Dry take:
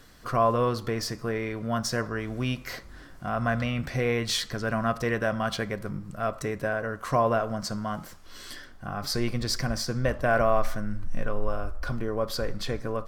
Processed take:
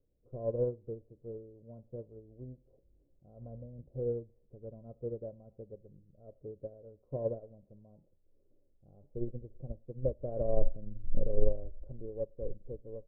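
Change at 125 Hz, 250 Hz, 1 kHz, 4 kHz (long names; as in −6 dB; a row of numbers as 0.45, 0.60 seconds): −11.5 dB, −15.0 dB, −27.0 dB, below −40 dB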